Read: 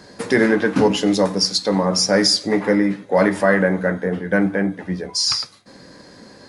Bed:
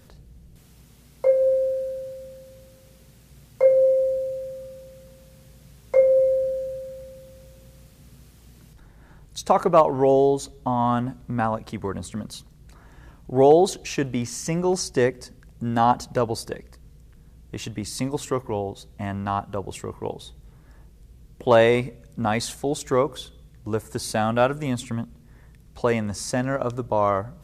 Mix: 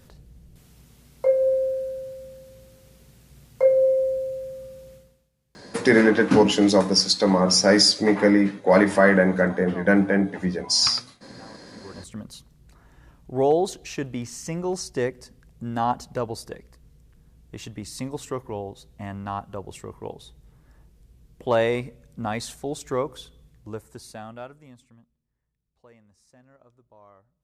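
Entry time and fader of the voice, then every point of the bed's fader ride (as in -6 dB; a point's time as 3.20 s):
5.55 s, -0.5 dB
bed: 4.94 s -1 dB
5.32 s -24 dB
11.66 s -24 dB
12.09 s -5 dB
23.48 s -5 dB
25.30 s -31.5 dB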